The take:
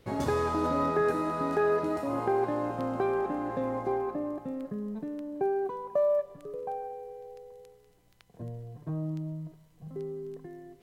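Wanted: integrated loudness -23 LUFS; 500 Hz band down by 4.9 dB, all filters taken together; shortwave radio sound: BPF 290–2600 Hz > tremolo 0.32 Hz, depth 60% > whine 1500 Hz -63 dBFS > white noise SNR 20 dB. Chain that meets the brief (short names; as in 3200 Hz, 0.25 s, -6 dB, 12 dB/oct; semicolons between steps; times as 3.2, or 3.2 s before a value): BPF 290–2600 Hz; bell 500 Hz -5.5 dB; tremolo 0.32 Hz, depth 60%; whine 1500 Hz -63 dBFS; white noise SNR 20 dB; gain +14 dB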